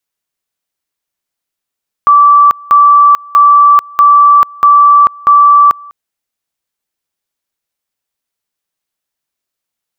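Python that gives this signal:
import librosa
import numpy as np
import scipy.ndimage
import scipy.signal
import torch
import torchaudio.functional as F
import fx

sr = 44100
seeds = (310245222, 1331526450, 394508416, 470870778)

y = fx.two_level_tone(sr, hz=1160.0, level_db=-1.5, drop_db=26.5, high_s=0.44, low_s=0.2, rounds=6)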